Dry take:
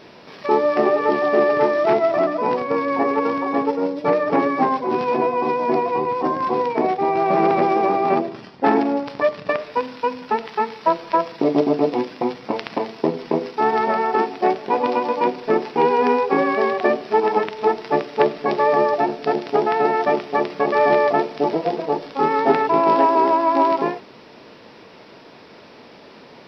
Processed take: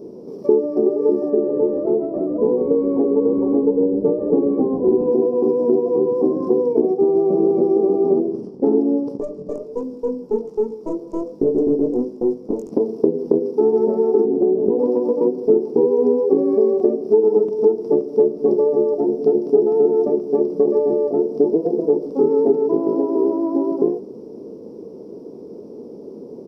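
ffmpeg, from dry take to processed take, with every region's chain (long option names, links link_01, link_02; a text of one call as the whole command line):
ffmpeg -i in.wav -filter_complex "[0:a]asettb=1/sr,asplit=3[link_01][link_02][link_03];[link_01]atrim=end=1.304[link_04];[link_02]atrim=start=1.3:end=5.12,asetpts=PTS-STARTPTS,afade=type=in:duration=0.004:curve=qsin,afade=type=out:start_time=3.816:duration=0.004:curve=qsin,lowpass=2800,asplit=6[link_05][link_06][link_07][link_08][link_09][link_10];[link_06]adelay=129,afreqshift=-77,volume=-14.5dB[link_11];[link_07]adelay=258,afreqshift=-154,volume=-20.7dB[link_12];[link_08]adelay=387,afreqshift=-231,volume=-26.9dB[link_13];[link_09]adelay=516,afreqshift=-308,volume=-33.1dB[link_14];[link_10]adelay=645,afreqshift=-385,volume=-39.3dB[link_15];[link_05][link_11][link_12][link_13][link_14][link_15]amix=inputs=6:normalize=0,atrim=end_sample=168462[link_16];[link_03]atrim=start=5.116[link_17];[link_04][link_16]acrossfade=duration=0.004:curve1=hsin:curve2=qsin[link_18];[link_18][link_17]acrossfade=duration=0.004:curve1=qsin:curve2=hsin,asettb=1/sr,asplit=3[link_19][link_20][link_21];[link_19]atrim=end=9.174[link_22];[link_20]atrim=start=9.17:end=12.72,asetpts=PTS-STARTPTS,afade=type=in:duration=0.004:curve=qsin,afade=type=out:start_time=3.546:duration=0.004:curve=qsin,flanger=delay=18.5:depth=2.9:speed=1.3,aeval=exprs='(tanh(10*val(0)+0.55)-tanh(0.55))/10':channel_layout=same[link_23];[link_21]atrim=start=12.716[link_24];[link_22][link_23]acrossfade=duration=0.004:curve1=hsin:curve2=qsin[link_25];[link_25][link_24]acrossfade=duration=0.004:curve1=qsin:curve2=hsin,asettb=1/sr,asplit=3[link_26][link_27][link_28];[link_26]atrim=end=14.254[link_29];[link_27]atrim=start=14.25:end=14.79,asetpts=PTS-STARTPTS,afade=type=in:duration=0.004:curve=qsin,afade=type=out:start_time=0.536:duration=0.004:curve=qsin,tiltshelf=frequency=1200:gain=10,acompressor=threshold=-20dB:ratio=6:attack=3.2:release=140:knee=1:detection=peak[link_30];[link_28]atrim=start=14.786[link_31];[link_29][link_30]acrossfade=duration=0.004:curve1=hsin:curve2=qsin[link_32];[link_32][link_31]acrossfade=duration=0.004:curve1=qsin:curve2=hsin,firequalizer=gain_entry='entry(130,0);entry(200,7);entry(690,6);entry(1700,-27);entry(4000,-20);entry(6600,8)':delay=0.05:min_phase=1,acompressor=threshold=-17dB:ratio=6,lowshelf=frequency=540:width_type=q:width=3:gain=7,volume=-5.5dB" out.wav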